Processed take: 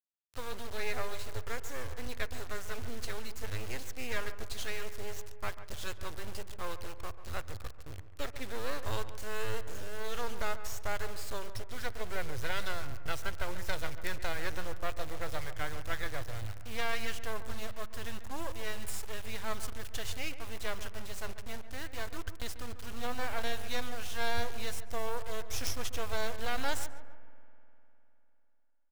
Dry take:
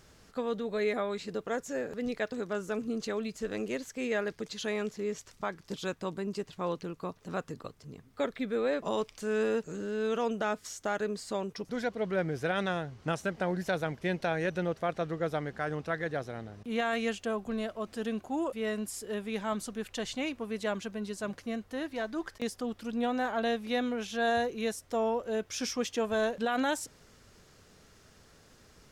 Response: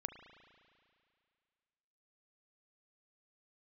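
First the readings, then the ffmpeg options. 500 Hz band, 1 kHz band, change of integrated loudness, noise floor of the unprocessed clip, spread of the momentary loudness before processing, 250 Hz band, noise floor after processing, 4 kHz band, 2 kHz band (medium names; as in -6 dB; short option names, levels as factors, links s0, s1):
-10.0 dB, -5.0 dB, -6.0 dB, -60 dBFS, 7 LU, -14.0 dB, -49 dBFS, 0.0 dB, -2.5 dB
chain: -filter_complex "[0:a]equalizer=f=360:w=0.46:g=-8.5,acrusher=bits=5:dc=4:mix=0:aa=0.000001,lowshelf=f=130:t=q:w=3:g=10,asplit=2[s0][s1];[s1]adelay=141,lowpass=f=1900:p=1,volume=0.251,asplit=2[s2][s3];[s3]adelay=141,lowpass=f=1900:p=1,volume=0.46,asplit=2[s4][s5];[s5]adelay=141,lowpass=f=1900:p=1,volume=0.46,asplit=2[s6][s7];[s7]adelay=141,lowpass=f=1900:p=1,volume=0.46,asplit=2[s8][s9];[s9]adelay=141,lowpass=f=1900:p=1,volume=0.46[s10];[s0][s2][s4][s6][s8][s10]amix=inputs=6:normalize=0,asplit=2[s11][s12];[1:a]atrim=start_sample=2205,asetrate=30870,aresample=44100[s13];[s12][s13]afir=irnorm=-1:irlink=0,volume=0.316[s14];[s11][s14]amix=inputs=2:normalize=0,volume=1.12"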